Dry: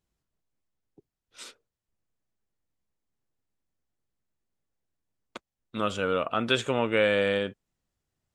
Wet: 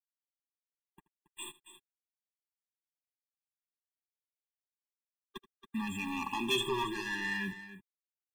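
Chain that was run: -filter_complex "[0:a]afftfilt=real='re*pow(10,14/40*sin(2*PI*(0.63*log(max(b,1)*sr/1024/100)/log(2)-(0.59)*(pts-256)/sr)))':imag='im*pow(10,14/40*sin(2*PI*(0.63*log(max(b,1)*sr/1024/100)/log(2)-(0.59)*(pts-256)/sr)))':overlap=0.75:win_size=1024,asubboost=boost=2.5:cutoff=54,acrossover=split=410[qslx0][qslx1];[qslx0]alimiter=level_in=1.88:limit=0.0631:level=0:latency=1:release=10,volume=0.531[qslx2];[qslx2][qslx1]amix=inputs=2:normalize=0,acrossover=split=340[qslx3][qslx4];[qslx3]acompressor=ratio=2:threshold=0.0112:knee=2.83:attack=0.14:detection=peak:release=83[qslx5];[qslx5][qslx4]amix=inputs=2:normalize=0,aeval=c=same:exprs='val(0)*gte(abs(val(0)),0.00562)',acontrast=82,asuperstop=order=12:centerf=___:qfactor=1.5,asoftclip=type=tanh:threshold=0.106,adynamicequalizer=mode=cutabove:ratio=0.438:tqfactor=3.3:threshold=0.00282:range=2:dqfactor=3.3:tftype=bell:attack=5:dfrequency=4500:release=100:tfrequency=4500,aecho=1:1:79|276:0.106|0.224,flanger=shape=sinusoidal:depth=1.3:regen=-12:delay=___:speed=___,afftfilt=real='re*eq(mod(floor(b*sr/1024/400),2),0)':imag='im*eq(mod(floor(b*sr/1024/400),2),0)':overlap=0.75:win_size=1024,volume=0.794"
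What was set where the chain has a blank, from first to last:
5300, 4.4, 0.34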